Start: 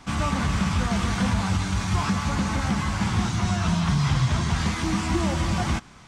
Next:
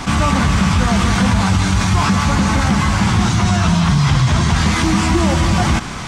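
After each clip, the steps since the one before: level flattener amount 50%; trim +7 dB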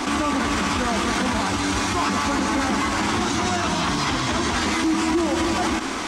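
resonant low shelf 210 Hz -11 dB, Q 3; peak limiter -13.5 dBFS, peak gain reduction 11 dB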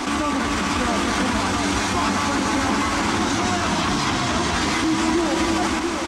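delay 690 ms -5.5 dB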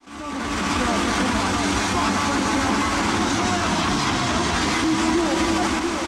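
fade-in on the opening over 0.71 s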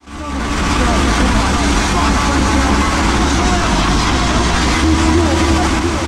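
octave divider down 2 oct, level +3 dB; trim +6 dB

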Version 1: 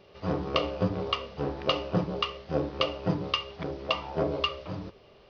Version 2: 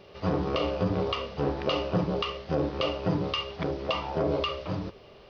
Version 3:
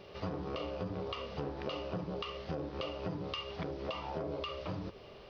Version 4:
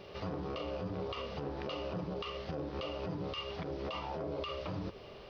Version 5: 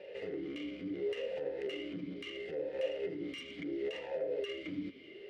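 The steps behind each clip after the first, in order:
peak limiter -21.5 dBFS, peak gain reduction 10.5 dB; trim +4.5 dB
compression 6:1, threshold -35 dBFS, peak gain reduction 12.5 dB; trim -1 dB
peak limiter -32 dBFS, peak gain reduction 7.5 dB; trim +2 dB
tracing distortion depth 0.2 ms; small resonant body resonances 930/2100 Hz, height 13 dB, ringing for 65 ms; talking filter e-i 0.72 Hz; trim +10 dB

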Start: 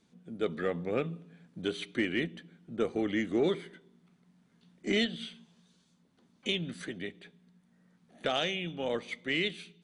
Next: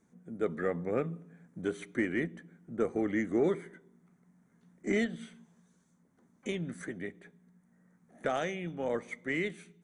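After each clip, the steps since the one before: high-order bell 3.6 kHz -14.5 dB 1.2 oct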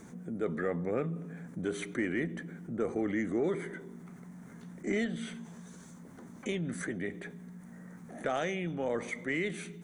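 level flattener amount 50%; trim -3.5 dB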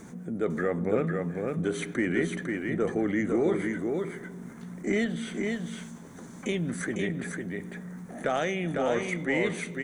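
delay 502 ms -4 dB; trim +4.5 dB

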